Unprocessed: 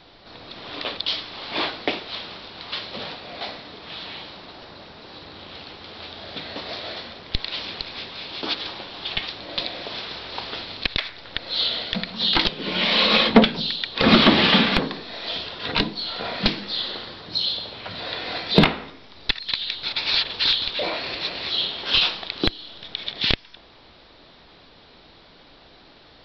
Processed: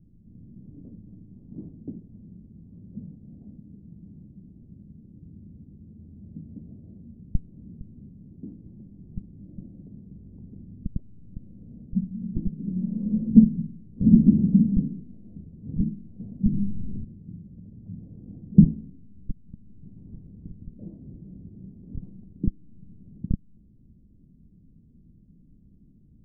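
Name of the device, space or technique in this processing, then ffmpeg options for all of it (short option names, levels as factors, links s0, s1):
the neighbour's flat through the wall: -filter_complex "[0:a]asplit=3[s0][s1][s2];[s0]afade=t=out:st=16.52:d=0.02[s3];[s1]aemphasis=mode=reproduction:type=riaa,afade=t=in:st=16.52:d=0.02,afade=t=out:st=17.03:d=0.02[s4];[s2]afade=t=in:st=17.03:d=0.02[s5];[s3][s4][s5]amix=inputs=3:normalize=0,lowpass=f=210:w=0.5412,lowpass=f=210:w=1.3066,equalizer=f=200:t=o:w=0.84:g=5,volume=1.33"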